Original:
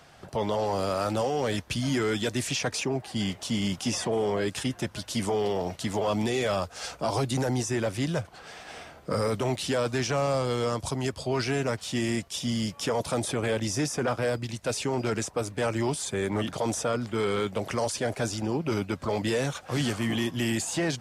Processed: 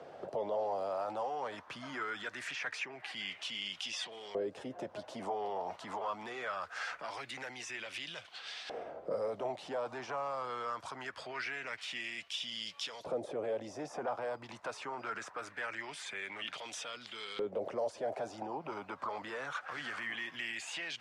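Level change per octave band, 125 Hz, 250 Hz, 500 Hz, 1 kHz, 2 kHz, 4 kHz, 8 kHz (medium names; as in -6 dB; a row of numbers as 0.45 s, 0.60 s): -26.5 dB, -20.0 dB, -11.0 dB, -6.5 dB, -5.0 dB, -8.0 dB, -17.0 dB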